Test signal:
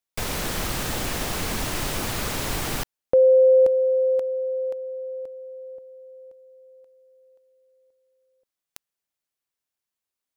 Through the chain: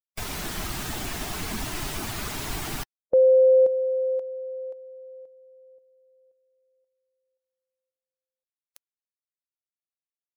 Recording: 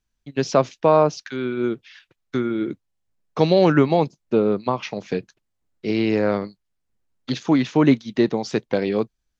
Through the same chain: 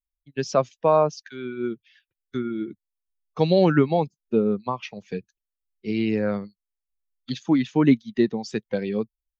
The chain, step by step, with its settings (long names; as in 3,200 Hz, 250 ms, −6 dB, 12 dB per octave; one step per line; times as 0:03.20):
spectral dynamics exaggerated over time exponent 1.5
dynamic equaliser 210 Hz, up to +4 dB, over −37 dBFS, Q 2.3
level −1.5 dB